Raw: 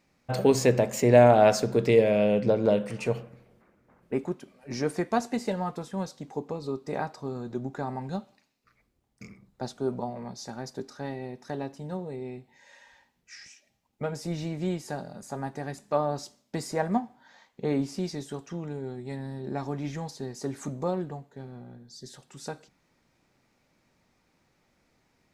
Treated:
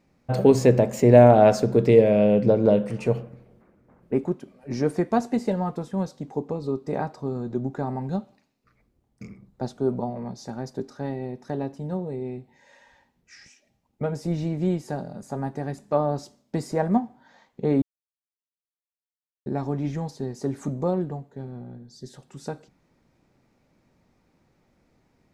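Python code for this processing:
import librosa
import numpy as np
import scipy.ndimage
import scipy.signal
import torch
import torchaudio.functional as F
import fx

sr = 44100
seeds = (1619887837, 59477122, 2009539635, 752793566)

y = fx.edit(x, sr, fx.silence(start_s=17.82, length_s=1.64), tone=tone)
y = fx.tilt_shelf(y, sr, db=5.0, hz=930.0)
y = y * 10.0 ** (1.5 / 20.0)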